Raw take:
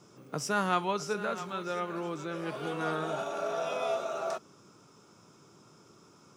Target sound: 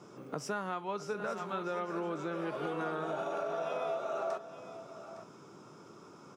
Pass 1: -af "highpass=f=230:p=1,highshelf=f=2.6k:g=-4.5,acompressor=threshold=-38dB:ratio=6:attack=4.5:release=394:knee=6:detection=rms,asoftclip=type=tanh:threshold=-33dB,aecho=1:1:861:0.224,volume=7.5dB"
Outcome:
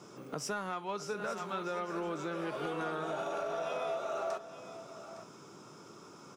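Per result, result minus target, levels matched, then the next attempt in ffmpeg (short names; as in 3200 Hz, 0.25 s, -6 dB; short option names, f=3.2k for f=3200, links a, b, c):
soft clip: distortion +13 dB; 4000 Hz band +4.0 dB
-af "highpass=f=230:p=1,highshelf=f=2.6k:g=-4.5,acompressor=threshold=-38dB:ratio=6:attack=4.5:release=394:knee=6:detection=rms,asoftclip=type=tanh:threshold=-26dB,aecho=1:1:861:0.224,volume=7.5dB"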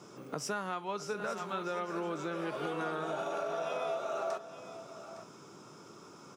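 4000 Hz band +4.0 dB
-af "highpass=f=230:p=1,highshelf=f=2.6k:g=-11.5,acompressor=threshold=-38dB:ratio=6:attack=4.5:release=394:knee=6:detection=rms,asoftclip=type=tanh:threshold=-26dB,aecho=1:1:861:0.224,volume=7.5dB"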